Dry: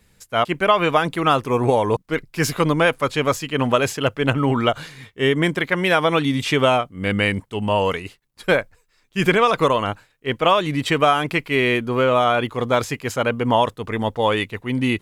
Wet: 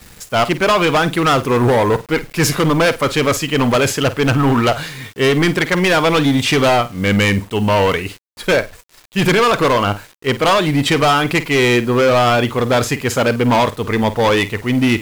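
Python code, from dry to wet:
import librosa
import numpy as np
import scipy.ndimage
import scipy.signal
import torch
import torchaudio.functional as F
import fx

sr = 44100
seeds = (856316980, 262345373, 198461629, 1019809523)

y = fx.law_mismatch(x, sr, coded='mu')
y = np.clip(10.0 ** (17.0 / 20.0) * y, -1.0, 1.0) / 10.0 ** (17.0 / 20.0)
y = fx.room_flutter(y, sr, wall_m=8.5, rt60_s=0.21)
y = fx.quant_dither(y, sr, seeds[0], bits=8, dither='none')
y = y * librosa.db_to_amplitude(7.0)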